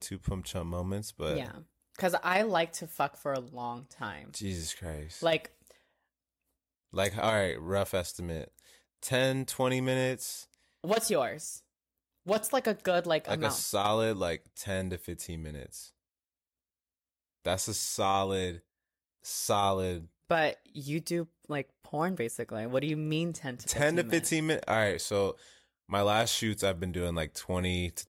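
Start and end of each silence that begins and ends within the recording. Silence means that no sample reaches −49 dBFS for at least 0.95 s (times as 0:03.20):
0:05.71–0:06.93
0:15.89–0:17.45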